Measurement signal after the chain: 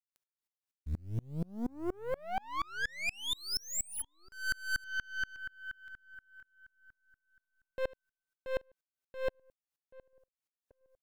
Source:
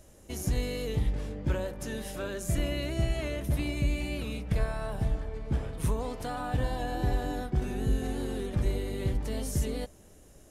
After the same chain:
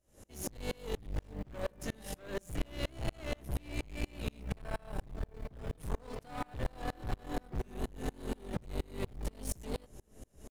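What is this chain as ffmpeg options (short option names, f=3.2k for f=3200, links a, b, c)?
-filter_complex "[0:a]aeval=exprs='(tanh(56.2*val(0)+0.55)-tanh(0.55))/56.2':c=same,acrusher=bits=8:mode=log:mix=0:aa=0.000001,asplit=2[a][b];[b]adelay=783,lowpass=f=1.2k:p=1,volume=-19dB,asplit=2[c][d];[d]adelay=783,lowpass=f=1.2k:p=1,volume=0.42,asplit=2[e][f];[f]adelay=783,lowpass=f=1.2k:p=1,volume=0.42[g];[c][e][g]amix=inputs=3:normalize=0[h];[a][h]amix=inputs=2:normalize=0,aeval=exprs='val(0)*pow(10,-32*if(lt(mod(-4.2*n/s,1),2*abs(-4.2)/1000),1-mod(-4.2*n/s,1)/(2*abs(-4.2)/1000),(mod(-4.2*n/s,1)-2*abs(-4.2)/1000)/(1-2*abs(-4.2)/1000))/20)':c=same,volume=7.5dB"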